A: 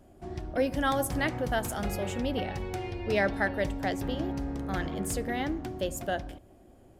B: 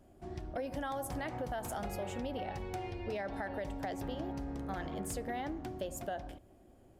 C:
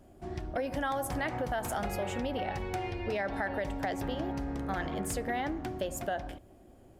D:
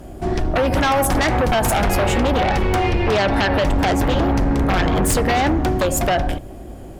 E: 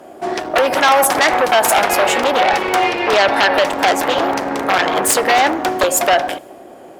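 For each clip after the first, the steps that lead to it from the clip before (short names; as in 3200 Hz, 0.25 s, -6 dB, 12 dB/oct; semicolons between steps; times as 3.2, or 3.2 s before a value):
dynamic EQ 770 Hz, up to +7 dB, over -42 dBFS, Q 1.2; limiter -19.5 dBFS, peak gain reduction 8 dB; compressor, threshold -30 dBFS, peak gain reduction 6.5 dB; gain -5 dB
dynamic EQ 1800 Hz, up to +4 dB, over -56 dBFS, Q 0.91; gain +4.5 dB
octaver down 2 oct, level 0 dB; sine folder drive 10 dB, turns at -19 dBFS; gain +5.5 dB
HPF 510 Hz 12 dB/oct; crackling interface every 0.15 s, samples 128, repeat, from 0.43; mismatched tape noise reduction decoder only; gain +7 dB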